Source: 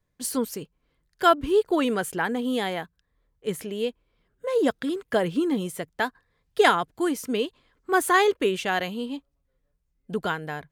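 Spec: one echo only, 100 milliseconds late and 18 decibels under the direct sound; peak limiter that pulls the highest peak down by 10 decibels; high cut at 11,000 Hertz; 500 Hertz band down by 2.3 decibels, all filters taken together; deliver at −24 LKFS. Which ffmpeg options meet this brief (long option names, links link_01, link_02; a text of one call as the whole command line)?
ffmpeg -i in.wav -af "lowpass=11000,equalizer=frequency=500:width_type=o:gain=-3,alimiter=limit=-16.5dB:level=0:latency=1,aecho=1:1:100:0.126,volume=5dB" out.wav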